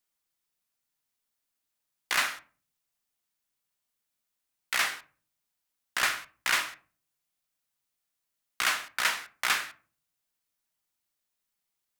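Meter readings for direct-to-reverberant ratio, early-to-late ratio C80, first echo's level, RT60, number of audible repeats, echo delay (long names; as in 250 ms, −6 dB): 9.5 dB, 22.5 dB, no echo audible, 0.40 s, no echo audible, no echo audible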